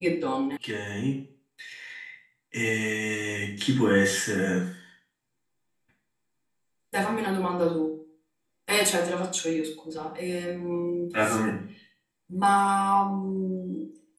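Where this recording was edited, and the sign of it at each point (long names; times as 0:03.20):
0:00.57: cut off before it has died away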